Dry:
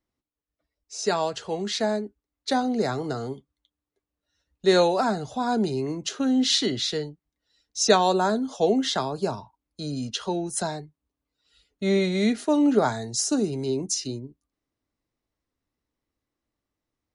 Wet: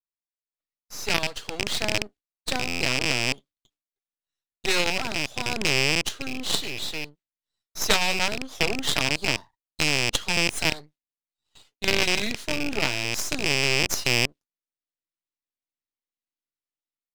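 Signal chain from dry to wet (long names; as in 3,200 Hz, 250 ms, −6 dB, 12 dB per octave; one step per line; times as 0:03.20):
loose part that buzzes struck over −36 dBFS, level −15 dBFS
meter weighting curve D
noise gate with hold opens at −43 dBFS
dynamic equaliser 5,300 Hz, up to −4 dB, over −28 dBFS, Q 1.6
automatic gain control gain up to 9.5 dB
harmonic generator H 2 −10 dB, 6 −16 dB, 8 −14 dB, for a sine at −0.5 dBFS
half-wave rectification
buffer that repeats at 0:02.68, samples 512, times 10
level −4.5 dB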